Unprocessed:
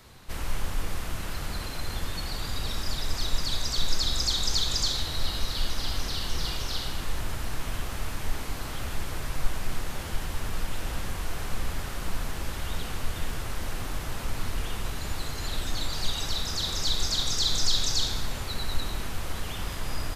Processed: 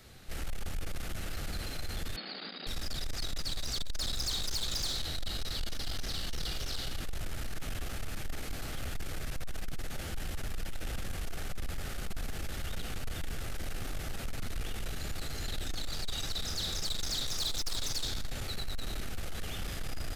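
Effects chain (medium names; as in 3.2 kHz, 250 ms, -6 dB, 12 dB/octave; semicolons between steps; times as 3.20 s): peaking EQ 1 kHz -14.5 dB 0.25 oct; saturation -27 dBFS, distortion -9 dB; 2.16–2.67 s: brick-wall FIR band-pass 170–5100 Hz; trim -2 dB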